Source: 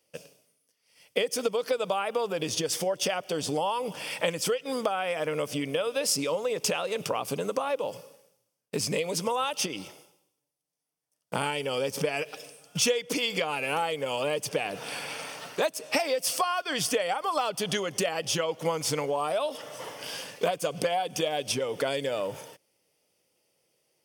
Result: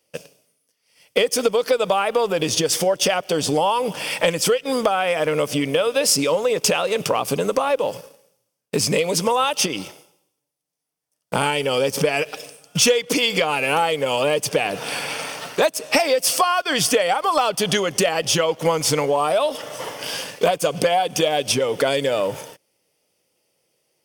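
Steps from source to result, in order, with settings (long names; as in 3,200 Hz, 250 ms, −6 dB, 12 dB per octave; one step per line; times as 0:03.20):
leveller curve on the samples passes 1
level +5.5 dB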